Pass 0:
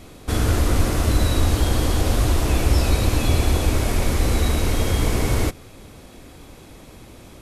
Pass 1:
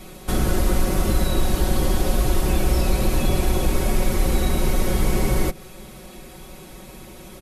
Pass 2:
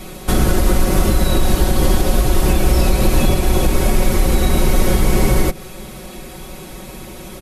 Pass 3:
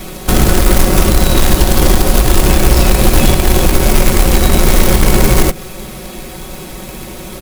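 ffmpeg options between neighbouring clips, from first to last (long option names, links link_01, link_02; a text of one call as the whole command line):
ffmpeg -i in.wav -filter_complex "[0:a]equalizer=frequency=12000:width_type=o:width=0.52:gain=6,aecho=1:1:5.4:0.93,acrossover=split=630|1500[link_01][link_02][link_03];[link_01]acompressor=threshold=-14dB:ratio=4[link_04];[link_02]acompressor=threshold=-35dB:ratio=4[link_05];[link_03]acompressor=threshold=-32dB:ratio=4[link_06];[link_04][link_05][link_06]amix=inputs=3:normalize=0" out.wav
ffmpeg -i in.wav -af "alimiter=limit=-11dB:level=0:latency=1:release=165,volume=7.5dB" out.wav
ffmpeg -i in.wav -filter_complex "[0:a]asplit=2[link_01][link_02];[link_02]asoftclip=type=tanh:threshold=-15dB,volume=-9.5dB[link_03];[link_01][link_03]amix=inputs=2:normalize=0,acrusher=bits=2:mode=log:mix=0:aa=0.000001,volume=2.5dB" out.wav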